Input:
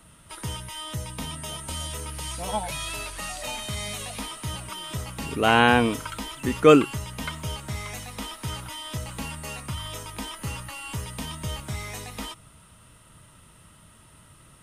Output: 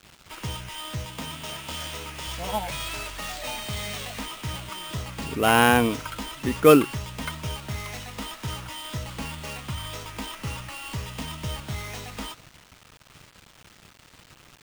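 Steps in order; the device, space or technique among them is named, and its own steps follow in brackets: 1.05–2.27 s: high-pass 140 Hz 6 dB/octave; early 8-bit sampler (sample-rate reducer 12 kHz, jitter 0%; bit crusher 8-bit)

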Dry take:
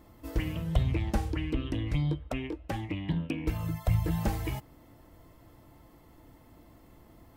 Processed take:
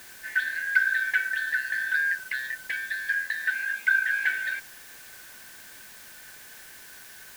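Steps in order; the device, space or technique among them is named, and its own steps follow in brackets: split-band scrambled radio (four frequency bands reordered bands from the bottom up 4123; band-pass 300–3000 Hz; white noise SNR 18 dB); 3.26–3.87 s: steep high-pass 160 Hz 96 dB/octave; trim +3 dB

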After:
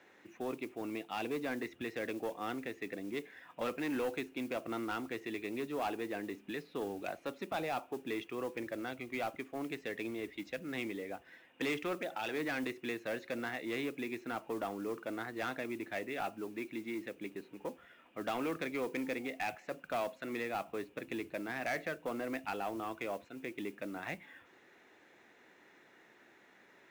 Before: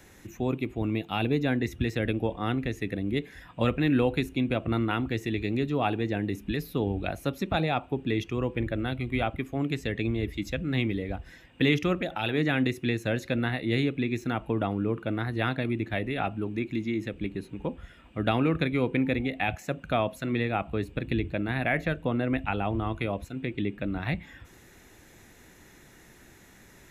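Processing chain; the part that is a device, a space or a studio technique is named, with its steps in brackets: carbon microphone (band-pass 360–3000 Hz; saturation -25 dBFS, distortion -13 dB; modulation noise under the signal 22 dB); trim -4.5 dB

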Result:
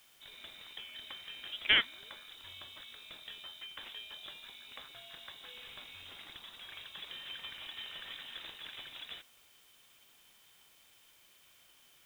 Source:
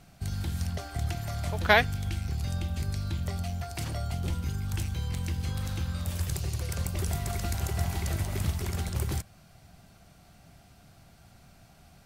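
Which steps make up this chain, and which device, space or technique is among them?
scrambled radio voice (band-pass 360–3000 Hz; frequency inversion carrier 3.8 kHz; white noise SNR 22 dB); trim -5 dB

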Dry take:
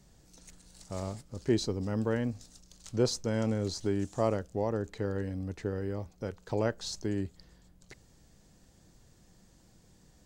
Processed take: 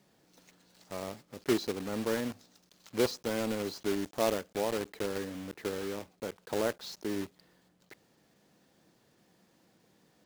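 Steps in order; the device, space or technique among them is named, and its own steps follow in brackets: early digital voice recorder (band-pass 230–3800 Hz; block-companded coder 3-bit)

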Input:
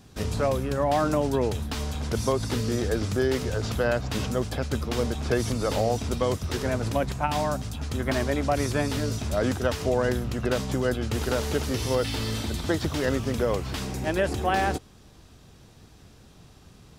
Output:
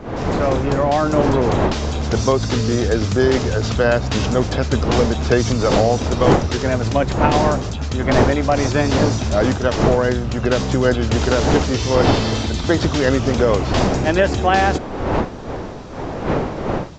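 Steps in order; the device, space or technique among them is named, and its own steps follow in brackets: smartphone video outdoors (wind noise 580 Hz -31 dBFS; level rider gain up to 11.5 dB; AAC 64 kbps 16 kHz)

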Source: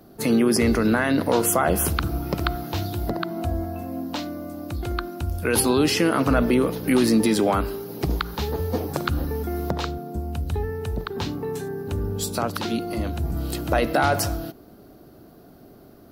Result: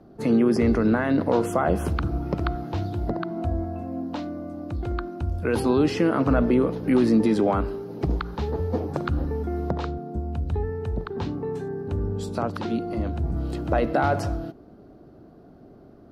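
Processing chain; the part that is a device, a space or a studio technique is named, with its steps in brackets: through cloth (low-pass 8.1 kHz 12 dB/octave; treble shelf 2.1 kHz -14 dB)

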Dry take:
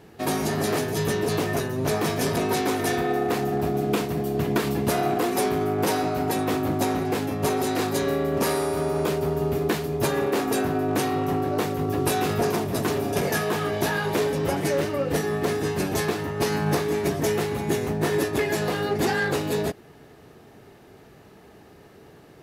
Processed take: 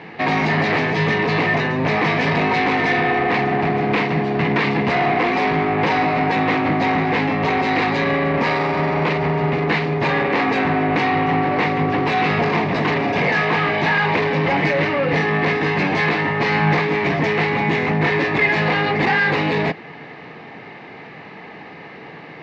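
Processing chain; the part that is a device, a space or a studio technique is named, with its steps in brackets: overdrive pedal into a guitar cabinet (overdrive pedal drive 24 dB, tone 3.4 kHz, clips at -9.5 dBFS; cabinet simulation 96–3800 Hz, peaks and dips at 160 Hz +6 dB, 390 Hz -8 dB, 620 Hz -6 dB, 1.4 kHz -8 dB, 2.1 kHz +7 dB, 3.3 kHz -6 dB); trim +2 dB

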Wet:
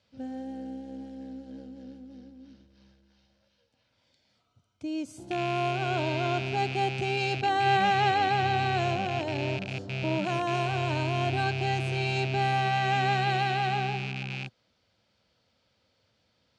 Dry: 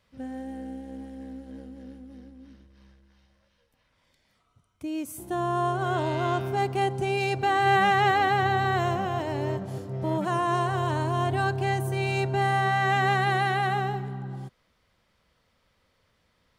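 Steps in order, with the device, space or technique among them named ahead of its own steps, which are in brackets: car door speaker with a rattle (rattle on loud lows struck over -35 dBFS, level -23 dBFS; cabinet simulation 100–7000 Hz, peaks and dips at 110 Hz +3 dB, 160 Hz -5 dB, 400 Hz -4 dB, 1.1 kHz -10 dB, 1.9 kHz -8 dB, 4.5 kHz +4 dB)

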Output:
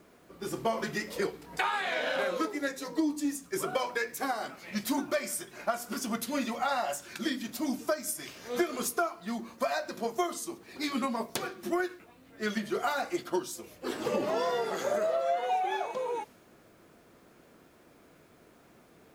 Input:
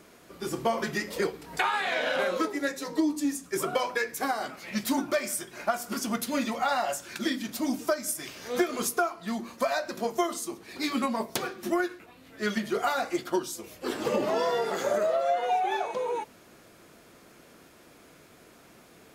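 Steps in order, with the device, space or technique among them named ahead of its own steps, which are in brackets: plain cassette with noise reduction switched in (tape noise reduction on one side only decoder only; wow and flutter 27 cents; white noise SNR 40 dB); trim -3 dB

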